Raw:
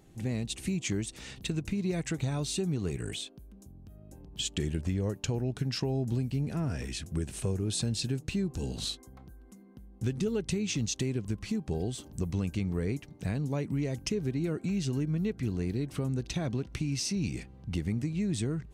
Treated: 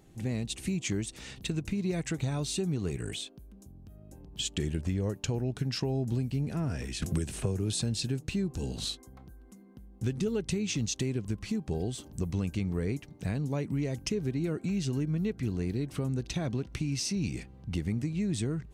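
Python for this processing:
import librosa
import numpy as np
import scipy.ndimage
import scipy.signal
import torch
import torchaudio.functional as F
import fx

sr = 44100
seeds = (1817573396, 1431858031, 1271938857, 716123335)

y = fx.band_squash(x, sr, depth_pct=100, at=(7.02, 7.73))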